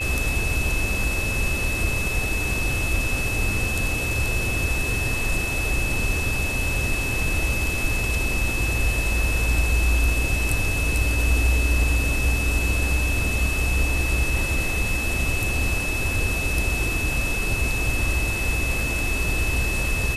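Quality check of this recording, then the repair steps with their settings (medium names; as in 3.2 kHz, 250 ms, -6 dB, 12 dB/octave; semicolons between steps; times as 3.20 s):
whine 2.6 kHz -26 dBFS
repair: band-stop 2.6 kHz, Q 30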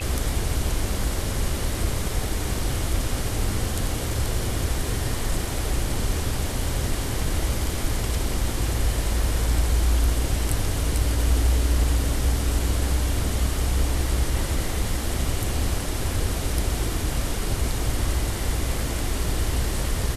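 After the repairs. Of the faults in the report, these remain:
nothing left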